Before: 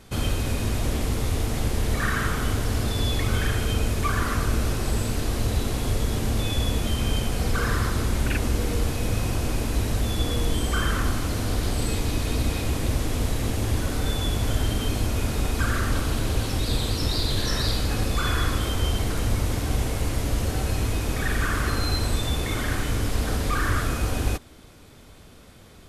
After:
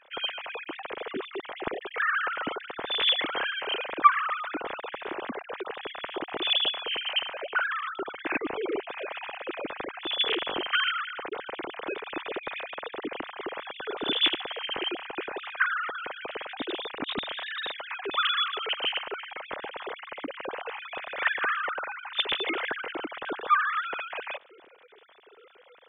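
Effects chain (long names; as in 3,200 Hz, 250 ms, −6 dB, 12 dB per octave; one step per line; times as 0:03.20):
three sine waves on the formant tracks
level −8 dB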